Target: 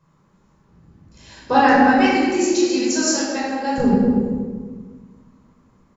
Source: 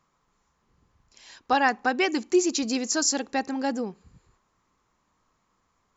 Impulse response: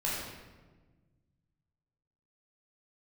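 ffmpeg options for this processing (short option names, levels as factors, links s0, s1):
-filter_complex "[0:a]asetnsamples=n=441:p=0,asendcmd='1.73 equalizer g -3.5;3.78 equalizer g 13.5',equalizer=f=180:t=o:w=2.9:g=13,asplit=2[s0][s1];[s1]adelay=234,lowpass=f=830:p=1,volume=0.631,asplit=2[s2][s3];[s3]adelay=234,lowpass=f=830:p=1,volume=0.37,asplit=2[s4][s5];[s5]adelay=234,lowpass=f=830:p=1,volume=0.37,asplit=2[s6][s7];[s7]adelay=234,lowpass=f=830:p=1,volume=0.37,asplit=2[s8][s9];[s9]adelay=234,lowpass=f=830:p=1,volume=0.37[s10];[s0][s2][s4][s6][s8][s10]amix=inputs=6:normalize=0[s11];[1:a]atrim=start_sample=2205[s12];[s11][s12]afir=irnorm=-1:irlink=0,volume=0.891"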